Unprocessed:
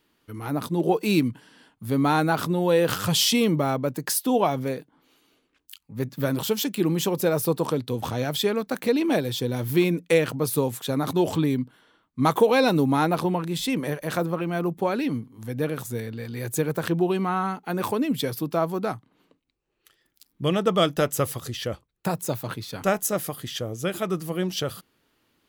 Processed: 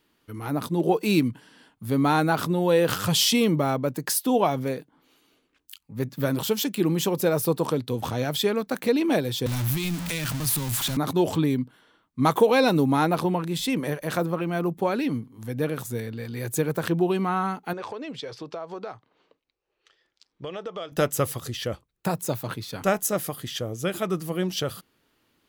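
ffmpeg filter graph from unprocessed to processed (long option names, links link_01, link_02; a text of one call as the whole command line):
ffmpeg -i in.wav -filter_complex "[0:a]asettb=1/sr,asplit=3[link_01][link_02][link_03];[link_01]atrim=end=9.464[link_04];[link_02]atrim=start=9.46:end=10.97,asetpts=PTS-STARTPTS,afade=type=in:duration=0.004:curve=qsin,afade=type=out:start_time=1.506:duration=0.004:curve=qsin,aeval=exprs='val(0)+0.5*0.0708*sgn(val(0))':channel_layout=same,equalizer=frequency=460:width=2.2:gain=-15,acrossover=split=150|3000[link_05][link_06][link_07];[link_06]acompressor=threshold=-31dB:ratio=6:attack=3.2:release=140:knee=2.83:detection=peak[link_08];[link_05][link_08][link_07]amix=inputs=3:normalize=0[link_09];[link_03]atrim=start=10.966[link_10];[link_04][link_09]acrossfade=duration=0.004:curve1=hsin:curve2=qsin[link_11];[link_11][link_10]acrossfade=duration=0.004:curve1=qsin:curve2=hsin,asettb=1/sr,asplit=3[link_12][link_13][link_14];[link_12]atrim=end=17.734[link_15];[link_13]atrim=start=17.73:end=20.92,asetpts=PTS-STARTPTS,afade=type=in:duration=0.004:curve=qsin,afade=type=out:start_time=3.186:duration=0.004:curve=qsin,lowshelf=frequency=340:width_type=q:width=1.5:gain=-8.5,acompressor=threshold=-31dB:ratio=6:attack=3.2:release=140:knee=1:detection=peak,lowpass=frequency=6100:width=0.5412,lowpass=frequency=6100:width=1.3066[link_16];[link_14]atrim=start=20.916[link_17];[link_15][link_16]acrossfade=duration=0.004:curve1=hsin:curve2=qsin[link_18];[link_18][link_17]acrossfade=duration=0.004:curve1=qsin:curve2=hsin" out.wav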